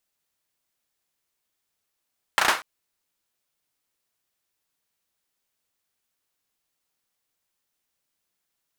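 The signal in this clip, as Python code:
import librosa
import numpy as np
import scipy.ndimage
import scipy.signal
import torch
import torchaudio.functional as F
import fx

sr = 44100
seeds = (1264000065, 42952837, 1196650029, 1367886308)

y = fx.drum_clap(sr, seeds[0], length_s=0.24, bursts=4, spacing_ms=34, hz=1200.0, decay_s=0.29)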